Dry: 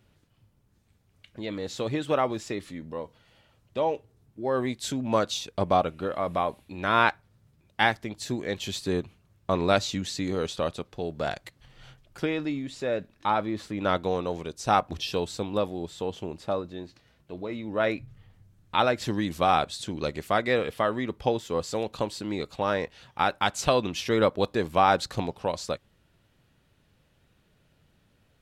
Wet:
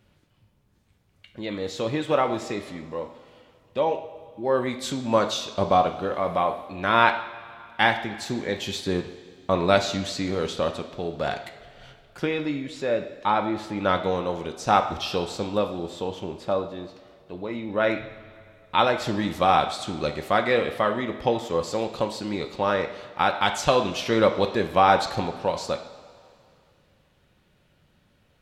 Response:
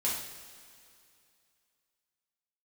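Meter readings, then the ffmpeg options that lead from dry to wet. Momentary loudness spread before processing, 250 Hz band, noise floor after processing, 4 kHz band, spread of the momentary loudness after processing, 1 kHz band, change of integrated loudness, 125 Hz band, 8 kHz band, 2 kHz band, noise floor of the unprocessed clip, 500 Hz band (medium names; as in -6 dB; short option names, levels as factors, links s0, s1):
12 LU, +2.0 dB, -63 dBFS, +3.0 dB, 13 LU, +3.5 dB, +3.0 dB, +1.5 dB, +0.5 dB, +3.5 dB, -66 dBFS, +3.0 dB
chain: -filter_complex "[0:a]asplit=2[s0][s1];[1:a]atrim=start_sample=2205,lowpass=5600,lowshelf=f=190:g=-11.5[s2];[s1][s2]afir=irnorm=-1:irlink=0,volume=0.398[s3];[s0][s3]amix=inputs=2:normalize=0"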